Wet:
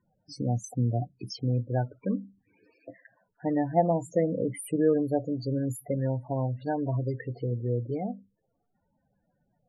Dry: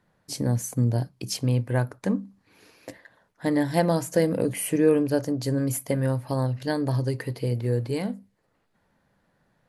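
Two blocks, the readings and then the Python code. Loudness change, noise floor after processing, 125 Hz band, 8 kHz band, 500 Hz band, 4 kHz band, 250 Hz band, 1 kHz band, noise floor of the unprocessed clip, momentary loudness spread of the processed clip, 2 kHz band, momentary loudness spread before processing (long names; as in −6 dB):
−4.0 dB, −76 dBFS, −4.0 dB, −11.0 dB, −3.0 dB, below −10 dB, −4.0 dB, +0.5 dB, −71 dBFS, 9 LU, −10.5 dB, 8 LU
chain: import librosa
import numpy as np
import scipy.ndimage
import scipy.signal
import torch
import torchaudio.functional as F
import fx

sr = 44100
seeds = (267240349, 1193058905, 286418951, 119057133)

y = fx.spec_topn(x, sr, count=16)
y = fx.small_body(y, sr, hz=(730.0, 3300.0), ring_ms=60, db=14)
y = y * librosa.db_to_amplitude(-4.0)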